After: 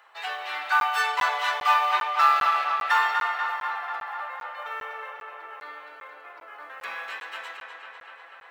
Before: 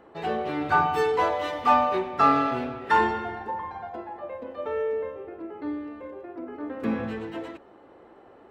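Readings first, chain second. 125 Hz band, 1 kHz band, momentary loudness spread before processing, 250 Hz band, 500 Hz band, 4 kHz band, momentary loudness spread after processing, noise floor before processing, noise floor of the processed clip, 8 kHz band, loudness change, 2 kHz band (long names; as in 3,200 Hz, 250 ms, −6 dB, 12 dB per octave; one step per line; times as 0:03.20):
below −25 dB, +1.0 dB, 17 LU, below −30 dB, −13.5 dB, +8.0 dB, 22 LU, −52 dBFS, −48 dBFS, can't be measured, +1.0 dB, +6.0 dB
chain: Bessel high-pass filter 1,500 Hz, order 4
in parallel at −2 dB: brickwall limiter −25 dBFS, peak gain reduction 10.5 dB
on the sum: floating-point word with a short mantissa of 4 bits
on a send: tape delay 246 ms, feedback 81%, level −5.5 dB, low-pass 4,500 Hz
on the sum: regular buffer underruns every 0.40 s, samples 512, zero, from 0:00.80
level +3 dB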